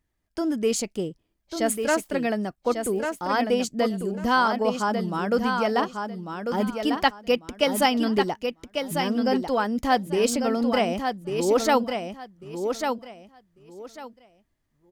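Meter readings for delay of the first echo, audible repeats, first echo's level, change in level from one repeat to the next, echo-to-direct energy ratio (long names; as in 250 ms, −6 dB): 1,146 ms, 3, −6.0 dB, −13.5 dB, −6.0 dB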